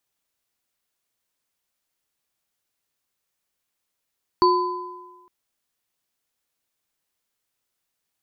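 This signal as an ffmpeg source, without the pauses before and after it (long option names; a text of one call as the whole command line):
ffmpeg -f lavfi -i "aevalsrc='0.168*pow(10,-3*t/1.21)*sin(2*PI*360*t)+0.211*pow(10,-3*t/1.3)*sin(2*PI*1010*t)+0.0501*pow(10,-3*t/0.62)*sin(2*PI*4490*t)':duration=0.86:sample_rate=44100" out.wav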